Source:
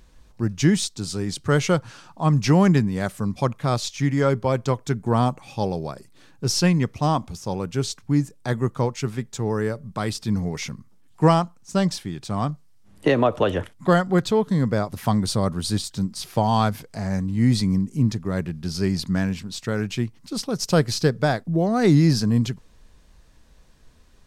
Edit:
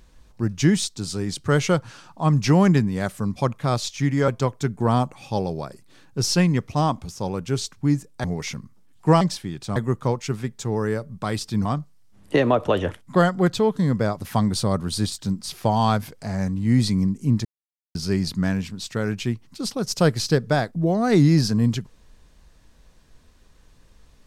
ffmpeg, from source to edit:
ffmpeg -i in.wav -filter_complex "[0:a]asplit=8[link_01][link_02][link_03][link_04][link_05][link_06][link_07][link_08];[link_01]atrim=end=4.282[link_09];[link_02]atrim=start=4.538:end=8.502[link_10];[link_03]atrim=start=10.388:end=11.362[link_11];[link_04]atrim=start=11.818:end=12.372[link_12];[link_05]atrim=start=8.498:end=10.392[link_13];[link_06]atrim=start=12.368:end=18.17,asetpts=PTS-STARTPTS,afade=type=out:start_time=5.798:duration=0.004:curve=hsin[link_14];[link_07]atrim=start=18.17:end=18.67,asetpts=PTS-STARTPTS,volume=0[link_15];[link_08]atrim=start=18.67,asetpts=PTS-STARTPTS,afade=type=in:duration=0.004:curve=hsin[link_16];[link_09][link_10]acrossfade=duration=0.004:curve1=hsin:curve2=hsin[link_17];[link_17][link_11]acrossfade=duration=0.004:curve1=hsin:curve2=hsin[link_18];[link_18][link_12]acrossfade=duration=0.004:curve1=hsin:curve2=hsin[link_19];[link_19][link_13]acrossfade=duration=0.004:curve1=hsin:curve2=hsin[link_20];[link_14][link_15][link_16]concat=n=3:v=0:a=1[link_21];[link_20][link_21]acrossfade=duration=0.004:curve1=hsin:curve2=hsin" out.wav

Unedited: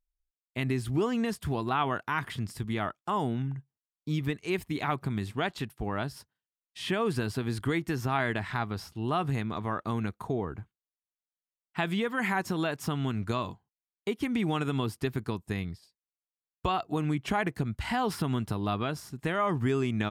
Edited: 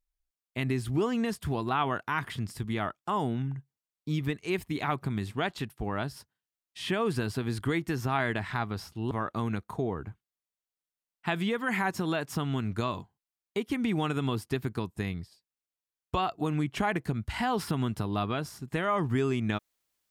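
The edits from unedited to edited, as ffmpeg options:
ffmpeg -i in.wav -filter_complex "[0:a]asplit=2[link_01][link_02];[link_01]atrim=end=9.112[link_03];[link_02]atrim=start=9.618[link_04];[link_03][link_04]acrossfade=duration=0.004:curve1=hsin:curve2=hsin" out.wav

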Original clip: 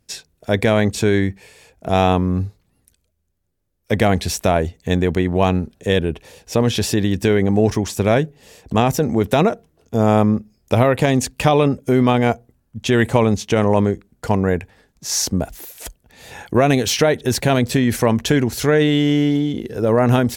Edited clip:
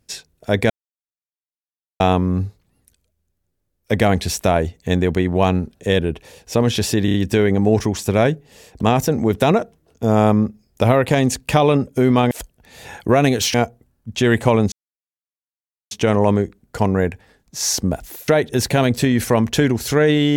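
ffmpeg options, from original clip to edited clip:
ffmpeg -i in.wav -filter_complex "[0:a]asplit=10[link_01][link_02][link_03][link_04][link_05][link_06][link_07][link_08][link_09][link_10];[link_01]atrim=end=0.7,asetpts=PTS-STARTPTS,afade=type=out:start_time=0.696:duration=0.004:curve=hsin[link_11];[link_02]atrim=start=0.7:end=2,asetpts=PTS-STARTPTS,volume=0[link_12];[link_03]atrim=start=2:end=7.082,asetpts=PTS-STARTPTS,afade=type=in:duration=0.004:curve=hsin[link_13];[link_04]atrim=start=7.048:end=7.082[link_14];[link_05]atrim=start=7.048:end=7.082[link_15];[link_06]atrim=start=7.048:end=12.222[link_16];[link_07]atrim=start=15.768:end=17.002[link_17];[link_08]atrim=start=12.218:end=13.4,asetpts=PTS-STARTPTS,afade=type=out:start_time=1.178:duration=0.004:curve=hsin,apad=pad_dur=1.19[link_18];[link_09]atrim=start=13.4:end=15.772,asetpts=PTS-STARTPTS,afade=type=in:duration=0.004:curve=hsin[link_19];[link_10]atrim=start=16.998[link_20];[link_11][link_12][link_13]concat=n=3:v=0:a=1[link_21];[link_21][link_14]acrossfade=duration=0.004:curve1=hsin:curve2=hsin[link_22];[link_22][link_15]acrossfade=duration=0.004:curve1=hsin:curve2=hsin[link_23];[link_23][link_16]acrossfade=duration=0.004:curve1=hsin:curve2=hsin[link_24];[link_24][link_17]acrossfade=duration=0.004:curve1=hsin:curve2=hsin[link_25];[link_18][link_19]concat=n=2:v=0:a=1[link_26];[link_25][link_26]acrossfade=duration=0.004:curve1=hsin:curve2=hsin[link_27];[link_27][link_20]acrossfade=duration=0.004:curve1=hsin:curve2=hsin" out.wav

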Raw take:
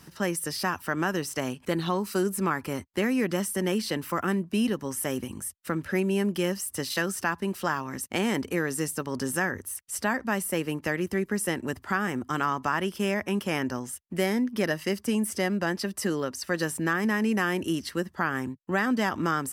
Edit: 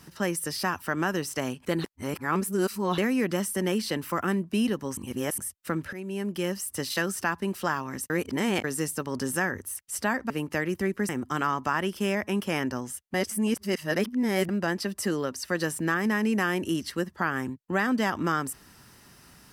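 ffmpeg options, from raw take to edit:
ffmpeg -i in.wav -filter_complex "[0:a]asplit=12[link_01][link_02][link_03][link_04][link_05][link_06][link_07][link_08][link_09][link_10][link_11][link_12];[link_01]atrim=end=1.842[link_13];[link_02]atrim=start=1.838:end=2.982,asetpts=PTS-STARTPTS,areverse[link_14];[link_03]atrim=start=2.978:end=4.972[link_15];[link_04]atrim=start=4.968:end=5.382,asetpts=PTS-STARTPTS,areverse[link_16];[link_05]atrim=start=5.378:end=5.93,asetpts=PTS-STARTPTS,afade=type=out:start_time=0.548:duration=0.004:curve=hsin:silence=0.16788[link_17];[link_06]atrim=start=5.93:end=8.102,asetpts=PTS-STARTPTS,afade=type=in:duration=0.98:curve=qsin:silence=0.16788[link_18];[link_07]atrim=start=8.098:end=8.642,asetpts=PTS-STARTPTS,areverse[link_19];[link_08]atrim=start=8.638:end=10.302[link_20];[link_09]atrim=start=10.618:end=11.412[link_21];[link_10]atrim=start=12.078:end=14.132[link_22];[link_11]atrim=start=14.128:end=15.482,asetpts=PTS-STARTPTS,areverse[link_23];[link_12]atrim=start=15.478[link_24];[link_13][link_14]acrossfade=duration=0.004:curve1=hsin:curve2=hsin[link_25];[link_25][link_15]acrossfade=duration=0.004:curve1=hsin:curve2=hsin[link_26];[link_26][link_16]acrossfade=duration=0.004:curve1=hsin:curve2=hsin[link_27];[link_17][link_18]concat=n=2:v=0:a=1[link_28];[link_27][link_28]acrossfade=duration=0.004:curve1=hsin:curve2=hsin[link_29];[link_29][link_19]acrossfade=duration=0.004:curve1=hsin:curve2=hsin[link_30];[link_30][link_20]acrossfade=duration=0.004:curve1=hsin:curve2=hsin[link_31];[link_31][link_21]acrossfade=duration=0.004:curve1=hsin:curve2=hsin[link_32];[link_32][link_22]acrossfade=duration=0.004:curve1=hsin:curve2=hsin[link_33];[link_33][link_23]acrossfade=duration=0.004:curve1=hsin:curve2=hsin[link_34];[link_34][link_24]acrossfade=duration=0.004:curve1=hsin:curve2=hsin" out.wav

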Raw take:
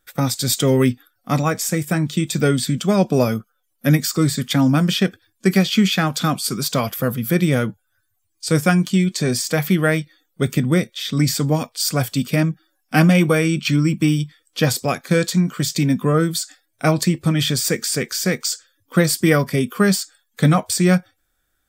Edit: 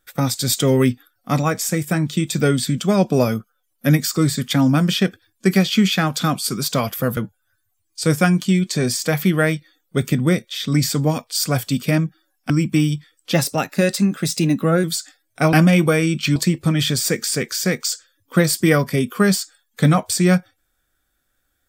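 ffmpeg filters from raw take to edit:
ffmpeg -i in.wav -filter_complex "[0:a]asplit=7[link_01][link_02][link_03][link_04][link_05][link_06][link_07];[link_01]atrim=end=7.172[link_08];[link_02]atrim=start=7.618:end=12.952[link_09];[link_03]atrim=start=13.778:end=14.614[link_10];[link_04]atrim=start=14.61:end=16.27,asetpts=PTS-STARTPTS,asetrate=48510,aresample=44100[link_11];[link_05]atrim=start=16.266:end=16.962[link_12];[link_06]atrim=start=12.948:end=13.782[link_13];[link_07]atrim=start=16.958[link_14];[link_08][link_09]acrossfade=duration=0.004:curve1=hsin:curve2=hsin[link_15];[link_15][link_10]acrossfade=duration=0.004:curve1=hsin:curve2=hsin[link_16];[link_16][link_11]acrossfade=duration=0.004:curve1=hsin:curve2=hsin[link_17];[link_17][link_12]acrossfade=duration=0.004:curve1=hsin:curve2=hsin[link_18];[link_18][link_13]acrossfade=duration=0.004:curve1=hsin:curve2=hsin[link_19];[link_19][link_14]acrossfade=duration=0.004:curve1=hsin:curve2=hsin" out.wav

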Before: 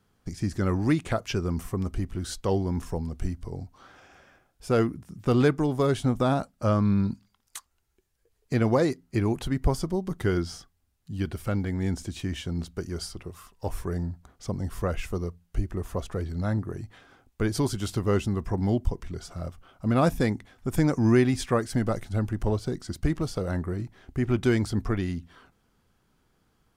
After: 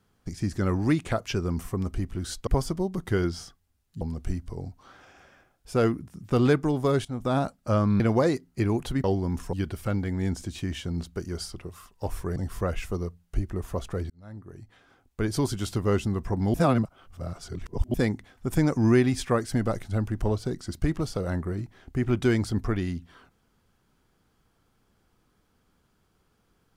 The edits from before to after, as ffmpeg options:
ffmpeg -i in.wav -filter_complex "[0:a]asplit=11[link_01][link_02][link_03][link_04][link_05][link_06][link_07][link_08][link_09][link_10][link_11];[link_01]atrim=end=2.472[link_12];[link_02]atrim=start=9.598:end=11.142[link_13];[link_03]atrim=start=2.958:end=6,asetpts=PTS-STARTPTS,afade=type=out:start_time=3.038:duration=0.004:curve=hsin:silence=0.149624[link_14];[link_04]atrim=start=6:end=6.952,asetpts=PTS-STARTPTS,afade=type=in:duration=0.34:silence=0.149624[link_15];[link_05]atrim=start=8.558:end=9.602[link_16];[link_06]atrim=start=2.468:end=2.962[link_17];[link_07]atrim=start=11.138:end=13.972[link_18];[link_08]atrim=start=14.568:end=16.31,asetpts=PTS-STARTPTS,afade=type=out:start_time=1.738:duration=0.004:curve=hsin[link_19];[link_09]atrim=start=16.31:end=18.752,asetpts=PTS-STARTPTS,afade=type=in:duration=1.32[link_20];[link_10]atrim=start=18.748:end=20.152,asetpts=PTS-STARTPTS,areverse[link_21];[link_11]atrim=start=20.148[link_22];[link_12][link_13]acrossfade=duration=0.004:curve1=hsin:curve2=hsin[link_23];[link_14][link_15]concat=n=2:v=0:a=1[link_24];[link_23][link_24]acrossfade=duration=0.004:curve1=hsin:curve2=hsin[link_25];[link_25][link_16]acrossfade=duration=0.004:curve1=hsin:curve2=hsin[link_26];[link_26][link_17]acrossfade=duration=0.004:curve1=hsin:curve2=hsin[link_27];[link_27][link_18]acrossfade=duration=0.004:curve1=hsin:curve2=hsin[link_28];[link_19][link_20]concat=n=2:v=0:a=1[link_29];[link_28][link_29]acrossfade=duration=0.004:curve1=hsin:curve2=hsin[link_30];[link_30][link_21]acrossfade=duration=0.004:curve1=hsin:curve2=hsin[link_31];[link_31][link_22]acrossfade=duration=0.004:curve1=hsin:curve2=hsin" out.wav

